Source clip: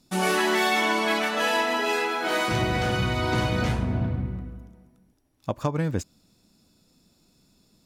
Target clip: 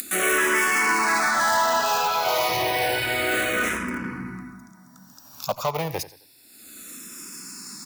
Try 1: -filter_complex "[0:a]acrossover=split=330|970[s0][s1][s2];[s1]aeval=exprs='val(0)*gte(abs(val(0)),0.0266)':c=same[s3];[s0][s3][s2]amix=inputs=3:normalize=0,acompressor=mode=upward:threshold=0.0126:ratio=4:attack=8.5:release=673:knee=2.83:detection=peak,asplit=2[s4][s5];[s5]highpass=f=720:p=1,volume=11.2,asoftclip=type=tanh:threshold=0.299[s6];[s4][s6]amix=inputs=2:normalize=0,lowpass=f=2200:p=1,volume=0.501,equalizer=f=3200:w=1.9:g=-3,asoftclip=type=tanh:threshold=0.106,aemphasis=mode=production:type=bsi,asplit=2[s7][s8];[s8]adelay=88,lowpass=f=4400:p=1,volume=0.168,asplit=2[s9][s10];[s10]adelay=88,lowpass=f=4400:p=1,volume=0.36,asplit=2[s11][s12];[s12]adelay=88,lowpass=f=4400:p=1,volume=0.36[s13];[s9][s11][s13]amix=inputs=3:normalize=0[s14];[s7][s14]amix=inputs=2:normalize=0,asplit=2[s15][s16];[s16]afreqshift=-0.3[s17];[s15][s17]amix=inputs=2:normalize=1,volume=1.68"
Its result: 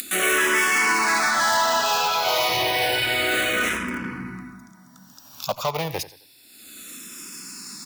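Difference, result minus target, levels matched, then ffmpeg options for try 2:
4 kHz band +3.5 dB
-filter_complex "[0:a]acrossover=split=330|970[s0][s1][s2];[s1]aeval=exprs='val(0)*gte(abs(val(0)),0.0266)':c=same[s3];[s0][s3][s2]amix=inputs=3:normalize=0,acompressor=mode=upward:threshold=0.0126:ratio=4:attack=8.5:release=673:knee=2.83:detection=peak,asplit=2[s4][s5];[s5]highpass=f=720:p=1,volume=11.2,asoftclip=type=tanh:threshold=0.299[s6];[s4][s6]amix=inputs=2:normalize=0,lowpass=f=2200:p=1,volume=0.501,equalizer=f=3200:w=1.9:g=-11,asoftclip=type=tanh:threshold=0.106,aemphasis=mode=production:type=bsi,asplit=2[s7][s8];[s8]adelay=88,lowpass=f=4400:p=1,volume=0.168,asplit=2[s9][s10];[s10]adelay=88,lowpass=f=4400:p=1,volume=0.36,asplit=2[s11][s12];[s12]adelay=88,lowpass=f=4400:p=1,volume=0.36[s13];[s9][s11][s13]amix=inputs=3:normalize=0[s14];[s7][s14]amix=inputs=2:normalize=0,asplit=2[s15][s16];[s16]afreqshift=-0.3[s17];[s15][s17]amix=inputs=2:normalize=1,volume=1.68"

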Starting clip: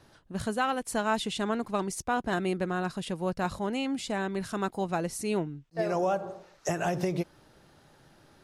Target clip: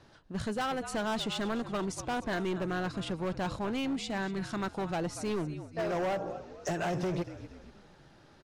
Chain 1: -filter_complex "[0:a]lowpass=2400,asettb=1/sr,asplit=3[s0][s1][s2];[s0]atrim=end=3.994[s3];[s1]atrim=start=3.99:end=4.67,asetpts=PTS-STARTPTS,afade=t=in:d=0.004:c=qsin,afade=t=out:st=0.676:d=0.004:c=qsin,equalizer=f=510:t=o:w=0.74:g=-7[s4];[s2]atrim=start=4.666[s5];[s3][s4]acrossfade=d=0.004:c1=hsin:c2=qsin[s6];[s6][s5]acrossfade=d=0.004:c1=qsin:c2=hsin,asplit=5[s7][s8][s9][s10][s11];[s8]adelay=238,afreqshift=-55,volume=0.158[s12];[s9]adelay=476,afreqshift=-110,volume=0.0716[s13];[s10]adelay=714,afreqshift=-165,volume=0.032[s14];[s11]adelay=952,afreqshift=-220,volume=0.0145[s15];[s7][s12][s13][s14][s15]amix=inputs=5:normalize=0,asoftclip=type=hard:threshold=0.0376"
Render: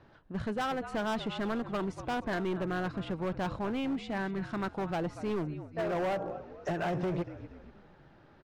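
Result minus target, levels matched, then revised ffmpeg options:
8 kHz band -11.0 dB
-filter_complex "[0:a]lowpass=6500,asettb=1/sr,asplit=3[s0][s1][s2];[s0]atrim=end=3.994[s3];[s1]atrim=start=3.99:end=4.67,asetpts=PTS-STARTPTS,afade=t=in:d=0.004:c=qsin,afade=t=out:st=0.676:d=0.004:c=qsin,equalizer=f=510:t=o:w=0.74:g=-7[s4];[s2]atrim=start=4.666[s5];[s3][s4]acrossfade=d=0.004:c1=hsin:c2=qsin[s6];[s6][s5]acrossfade=d=0.004:c1=qsin:c2=hsin,asplit=5[s7][s8][s9][s10][s11];[s8]adelay=238,afreqshift=-55,volume=0.158[s12];[s9]adelay=476,afreqshift=-110,volume=0.0716[s13];[s10]adelay=714,afreqshift=-165,volume=0.032[s14];[s11]adelay=952,afreqshift=-220,volume=0.0145[s15];[s7][s12][s13][s14][s15]amix=inputs=5:normalize=0,asoftclip=type=hard:threshold=0.0376"

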